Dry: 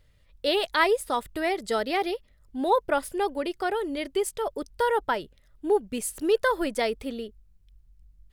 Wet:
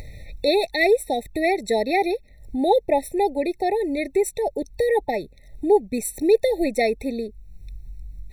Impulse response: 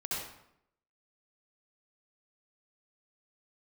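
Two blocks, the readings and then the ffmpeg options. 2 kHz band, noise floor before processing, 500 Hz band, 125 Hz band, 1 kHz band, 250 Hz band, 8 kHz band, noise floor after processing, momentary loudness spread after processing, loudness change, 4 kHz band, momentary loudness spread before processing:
+2.0 dB, -60 dBFS, +6.0 dB, no reading, +2.0 dB, +6.0 dB, +3.0 dB, -50 dBFS, 13 LU, +4.5 dB, +0.5 dB, 9 LU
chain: -af "acompressor=mode=upward:threshold=0.0355:ratio=2.5,afftfilt=real='re*eq(mod(floor(b*sr/1024/890),2),0)':imag='im*eq(mod(floor(b*sr/1024/890),2),0)':win_size=1024:overlap=0.75,volume=2"

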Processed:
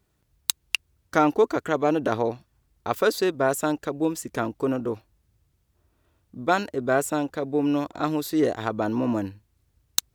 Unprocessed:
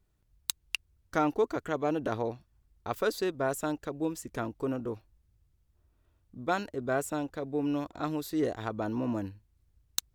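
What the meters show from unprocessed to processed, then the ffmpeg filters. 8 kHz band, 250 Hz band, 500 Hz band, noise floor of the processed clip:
+8.0 dB, +7.0 dB, +7.5 dB, -71 dBFS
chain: -af "highpass=f=130:p=1,volume=2.51"

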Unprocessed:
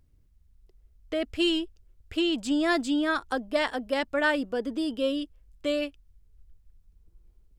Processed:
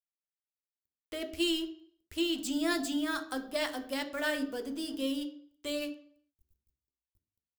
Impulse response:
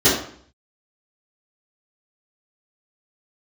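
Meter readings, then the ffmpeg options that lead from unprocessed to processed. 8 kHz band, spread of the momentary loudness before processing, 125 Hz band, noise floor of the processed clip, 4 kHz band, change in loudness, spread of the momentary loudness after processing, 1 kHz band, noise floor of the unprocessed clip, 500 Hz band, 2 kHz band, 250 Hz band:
+3.0 dB, 9 LU, no reading, under -85 dBFS, -3.5 dB, -6.0 dB, 11 LU, -8.5 dB, -62 dBFS, -8.0 dB, -7.0 dB, -5.5 dB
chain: -filter_complex "[0:a]aeval=exprs='sgn(val(0))*max(abs(val(0))-0.00398,0)':c=same,aemphasis=mode=production:type=75fm,asplit=2[s0][s1];[1:a]atrim=start_sample=2205[s2];[s1][s2]afir=irnorm=-1:irlink=0,volume=0.0398[s3];[s0][s3]amix=inputs=2:normalize=0,volume=0.398"

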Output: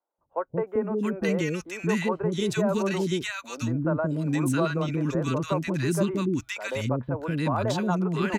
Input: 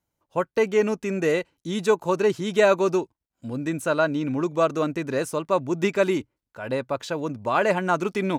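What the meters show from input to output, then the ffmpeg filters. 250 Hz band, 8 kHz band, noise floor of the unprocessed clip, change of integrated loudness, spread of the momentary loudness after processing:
+1.0 dB, 0.0 dB, -85 dBFS, -3.0 dB, 5 LU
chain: -filter_complex "[0:a]asubboost=boost=4:cutoff=240,acrossover=split=330|1300[s0][s1][s2];[s0]acompressor=threshold=0.0398:ratio=4[s3];[s1]acompressor=threshold=0.0501:ratio=4[s4];[s2]acompressor=threshold=0.0224:ratio=4[s5];[s3][s4][s5]amix=inputs=3:normalize=0,acrossover=split=410|1300[s6][s7][s8];[s6]adelay=180[s9];[s8]adelay=670[s10];[s9][s7][s10]amix=inputs=3:normalize=0,volume=1.26"

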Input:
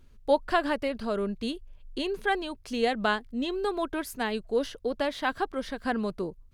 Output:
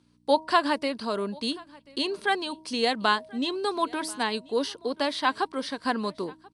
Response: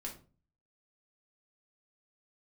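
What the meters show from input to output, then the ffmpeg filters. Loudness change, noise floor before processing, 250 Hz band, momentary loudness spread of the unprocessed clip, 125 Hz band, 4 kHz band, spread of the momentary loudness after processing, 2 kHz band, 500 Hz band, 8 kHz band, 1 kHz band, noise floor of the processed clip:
+2.0 dB, -54 dBFS, +0.5 dB, 8 LU, no reading, +7.0 dB, 8 LU, +2.0 dB, 0.0 dB, +6.0 dB, +4.0 dB, -62 dBFS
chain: -af "agate=range=0.501:threshold=0.00447:ratio=16:detection=peak,aemphasis=mode=production:type=75fm,bandreject=f=316:t=h:w=4,bandreject=f=632:t=h:w=4,bandreject=f=948:t=h:w=4,aeval=exprs='val(0)+0.00141*(sin(2*PI*60*n/s)+sin(2*PI*2*60*n/s)/2+sin(2*PI*3*60*n/s)/3+sin(2*PI*4*60*n/s)/4+sin(2*PI*5*60*n/s)/5)':c=same,highpass=160,equalizer=f=280:t=q:w=4:g=4,equalizer=f=1000:t=q:w=4:g=9,equalizer=f=4400:t=q:w=4:g=5,equalizer=f=6900:t=q:w=4:g=-9,lowpass=f=8800:w=0.5412,lowpass=f=8800:w=1.3066,aecho=1:1:1035:0.0631" -ar 24000 -c:a aac -b:a 96k

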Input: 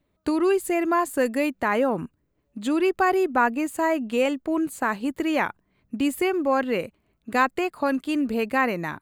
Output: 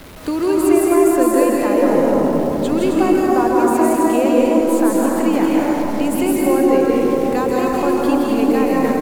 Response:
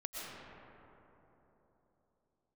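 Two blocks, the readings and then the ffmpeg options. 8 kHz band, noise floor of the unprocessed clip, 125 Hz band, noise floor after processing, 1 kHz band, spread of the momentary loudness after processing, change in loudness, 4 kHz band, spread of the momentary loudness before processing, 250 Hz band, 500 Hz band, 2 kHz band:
+11.0 dB, -72 dBFS, +11.5 dB, -20 dBFS, +5.5 dB, 4 LU, +8.5 dB, +4.0 dB, 6 LU, +10.5 dB, +10.0 dB, -1.0 dB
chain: -filter_complex "[0:a]aeval=exprs='val(0)+0.5*0.0211*sgn(val(0))':c=same,acrossover=split=280|920|4800[s0][s1][s2][s3];[s2]acompressor=threshold=0.0158:ratio=6[s4];[s3]aecho=1:1:163.3|265.3:0.891|0.708[s5];[s0][s1][s4][s5]amix=inputs=4:normalize=0[s6];[1:a]atrim=start_sample=2205,asetrate=33075,aresample=44100[s7];[s6][s7]afir=irnorm=-1:irlink=0,volume=1.78"

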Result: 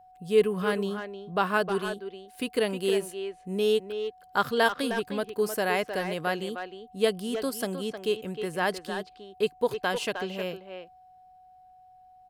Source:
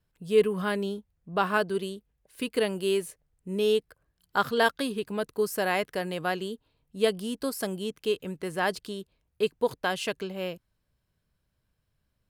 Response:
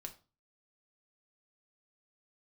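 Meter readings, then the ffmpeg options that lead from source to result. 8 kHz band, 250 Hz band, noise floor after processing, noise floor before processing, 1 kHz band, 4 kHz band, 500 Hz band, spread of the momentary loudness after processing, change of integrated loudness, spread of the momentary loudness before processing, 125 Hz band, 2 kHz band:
0.0 dB, +0.5 dB, -55 dBFS, -77 dBFS, +0.5 dB, +0.5 dB, +0.5 dB, 11 LU, 0.0 dB, 13 LU, 0.0 dB, +0.5 dB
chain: -filter_complex "[0:a]asplit=2[s0][s1];[s1]adelay=310,highpass=300,lowpass=3400,asoftclip=type=hard:threshold=0.119,volume=0.447[s2];[s0][s2]amix=inputs=2:normalize=0,aeval=exprs='val(0)+0.00251*sin(2*PI*740*n/s)':c=same"

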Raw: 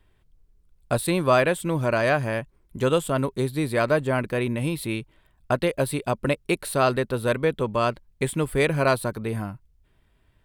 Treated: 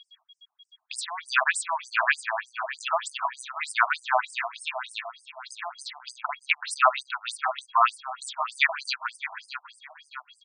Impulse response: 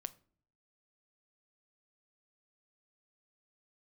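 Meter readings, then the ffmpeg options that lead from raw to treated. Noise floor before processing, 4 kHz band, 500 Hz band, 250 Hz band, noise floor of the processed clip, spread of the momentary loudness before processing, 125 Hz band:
-63 dBFS, +2.0 dB, -13.0 dB, under -40 dB, -72 dBFS, 9 LU, under -40 dB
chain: -af "aeval=exprs='val(0)+0.00178*sin(2*PI*3300*n/s)':c=same,aecho=1:1:631|1262|1893|2524:0.251|0.111|0.0486|0.0214,afftfilt=real='re*between(b*sr/1024,880*pow(7000/880,0.5+0.5*sin(2*PI*3.3*pts/sr))/1.41,880*pow(7000/880,0.5+0.5*sin(2*PI*3.3*pts/sr))*1.41)':imag='im*between(b*sr/1024,880*pow(7000/880,0.5+0.5*sin(2*PI*3.3*pts/sr))/1.41,880*pow(7000/880,0.5+0.5*sin(2*PI*3.3*pts/sr))*1.41)':win_size=1024:overlap=0.75,volume=2.66"

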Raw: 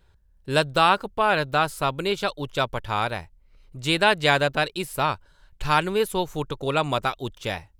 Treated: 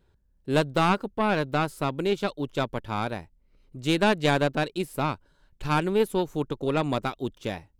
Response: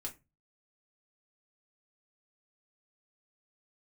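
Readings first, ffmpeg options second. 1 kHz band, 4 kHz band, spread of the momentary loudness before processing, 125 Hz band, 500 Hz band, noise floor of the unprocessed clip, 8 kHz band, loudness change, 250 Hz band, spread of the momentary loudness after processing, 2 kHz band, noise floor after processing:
-5.0 dB, -7.0 dB, 11 LU, +0.5 dB, -1.5 dB, -59 dBFS, -5.0 dB, -3.0 dB, +3.5 dB, 10 LU, -6.0 dB, -65 dBFS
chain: -af "aeval=exprs='0.631*(cos(1*acos(clip(val(0)/0.631,-1,1)))-cos(1*PI/2))+0.1*(cos(4*acos(clip(val(0)/0.631,-1,1)))-cos(4*PI/2))':c=same,equalizer=f=270:w=0.74:g=11,volume=0.422"

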